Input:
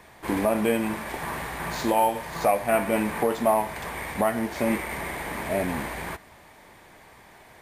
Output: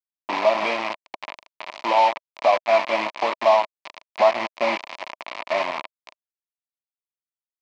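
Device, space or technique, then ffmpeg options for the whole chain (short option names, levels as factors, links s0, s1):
hand-held game console: -filter_complex "[0:a]asplit=3[s0][s1][s2];[s0]afade=t=out:st=3.7:d=0.02[s3];[s1]adynamicequalizer=threshold=0.0158:dfrequency=680:dqfactor=0.72:tfrequency=680:tqfactor=0.72:attack=5:release=100:ratio=0.375:range=1.5:mode=boostabove:tftype=bell,afade=t=in:st=3.7:d=0.02,afade=t=out:st=5.47:d=0.02[s4];[s2]afade=t=in:st=5.47:d=0.02[s5];[s3][s4][s5]amix=inputs=3:normalize=0,acrusher=bits=3:mix=0:aa=0.000001,highpass=420,equalizer=f=450:t=q:w=4:g=-9,equalizer=f=630:t=q:w=4:g=8,equalizer=f=1000:t=q:w=4:g=9,equalizer=f=1500:t=q:w=4:g=-8,equalizer=f=2300:t=q:w=4:g=6,equalizer=f=3500:t=q:w=4:g=-3,lowpass=f=4500:w=0.5412,lowpass=f=4500:w=1.3066"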